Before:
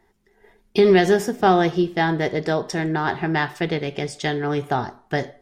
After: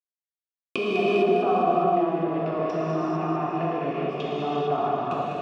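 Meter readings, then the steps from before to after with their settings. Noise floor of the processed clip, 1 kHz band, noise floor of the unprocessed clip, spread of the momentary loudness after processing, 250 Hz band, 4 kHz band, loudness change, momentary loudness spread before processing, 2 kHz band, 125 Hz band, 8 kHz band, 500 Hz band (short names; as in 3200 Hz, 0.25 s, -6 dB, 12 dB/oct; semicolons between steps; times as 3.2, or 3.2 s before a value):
under -85 dBFS, -1.0 dB, -62 dBFS, 7 LU, -5.0 dB, -8.0 dB, -4.0 dB, 10 LU, -10.0 dB, -6.5 dB, under -15 dB, -3.5 dB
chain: level-crossing sampler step -38.5 dBFS; recorder AGC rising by 49 dB/s; bell 570 Hz -14 dB 1.2 oct; sample leveller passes 3; treble ducked by the level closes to 680 Hz, closed at -9.5 dBFS; vowel filter a; notch comb 790 Hz; thin delay 0.202 s, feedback 66%, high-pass 1400 Hz, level -7 dB; non-linear reverb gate 0.48 s flat, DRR -7.5 dB; gain +1 dB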